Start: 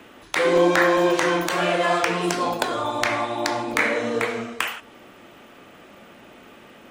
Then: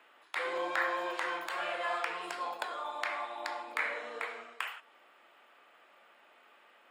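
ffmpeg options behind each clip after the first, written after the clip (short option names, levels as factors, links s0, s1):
-af "highpass=870,highshelf=f=3200:g=-10.5,bandreject=f=6000:w=5.3,volume=0.376"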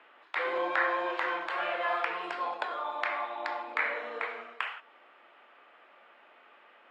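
-af "highpass=170,lowpass=3100,volume=1.58"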